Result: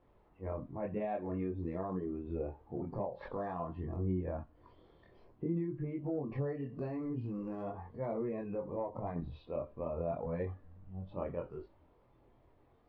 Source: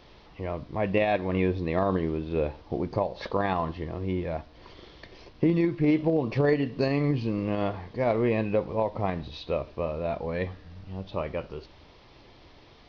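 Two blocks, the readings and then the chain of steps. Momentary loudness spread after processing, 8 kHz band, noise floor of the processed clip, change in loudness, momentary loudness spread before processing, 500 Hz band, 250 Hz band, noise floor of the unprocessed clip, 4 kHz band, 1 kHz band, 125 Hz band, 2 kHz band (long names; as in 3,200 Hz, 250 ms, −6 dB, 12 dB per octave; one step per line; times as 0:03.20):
7 LU, can't be measured, −67 dBFS, −11.0 dB, 11 LU, −11.0 dB, −11.0 dB, −53 dBFS, below −25 dB, −12.0 dB, −9.5 dB, −19.5 dB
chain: low-pass filter 1,200 Hz 12 dB per octave
transient designer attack −8 dB, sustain 0 dB
downward compressor 12 to 1, threshold −30 dBFS, peak gain reduction 10.5 dB
noise reduction from a noise print of the clip's start 9 dB
multi-voice chorus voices 2, 0.49 Hz, delay 23 ms, depth 1.9 ms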